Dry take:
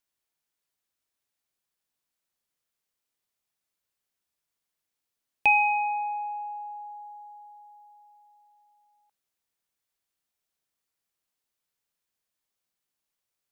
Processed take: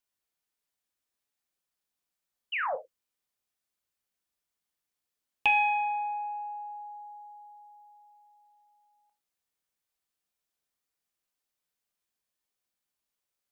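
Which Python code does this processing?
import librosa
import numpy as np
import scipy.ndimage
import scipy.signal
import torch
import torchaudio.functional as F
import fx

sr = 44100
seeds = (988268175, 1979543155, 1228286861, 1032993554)

y = fx.spec_paint(x, sr, seeds[0], shape='fall', start_s=2.52, length_s=0.24, low_hz=460.0, high_hz=3100.0, level_db=-28.0)
y = fx.rev_gated(y, sr, seeds[1], gate_ms=130, shape='falling', drr_db=6.5)
y = fx.doppler_dist(y, sr, depth_ms=0.18)
y = y * 10.0 ** (-3.0 / 20.0)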